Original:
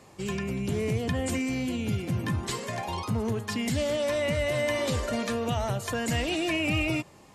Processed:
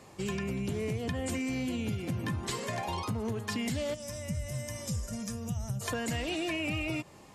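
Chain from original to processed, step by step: time-frequency box 3.94–5.81 s, 220–4800 Hz -16 dB; compression, threshold -30 dBFS, peak gain reduction 7.5 dB

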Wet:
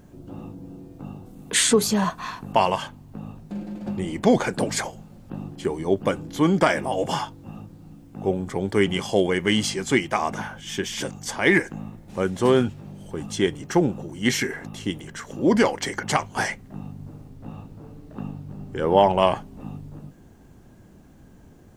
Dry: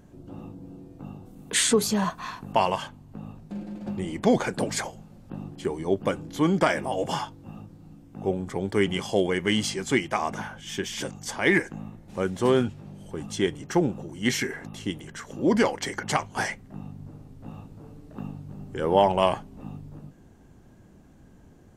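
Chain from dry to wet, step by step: 17.29–19.36 s: treble shelf 8.5 kHz -9.5 dB; word length cut 12-bit, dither none; trim +3 dB

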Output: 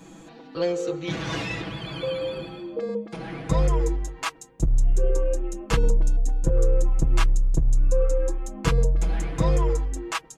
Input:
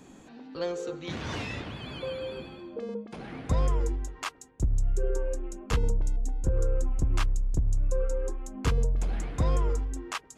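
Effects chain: comb 6.1 ms, depth 94%; trim +3 dB

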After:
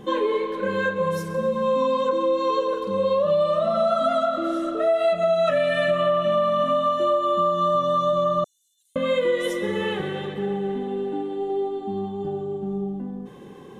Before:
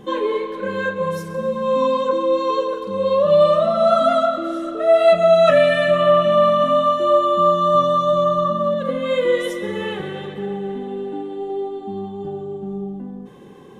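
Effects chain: 8.44–8.96 s: inverse Chebyshev high-pass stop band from 1.3 kHz, stop band 80 dB; compression 6:1, threshold -18 dBFS, peak gain reduction 9.5 dB

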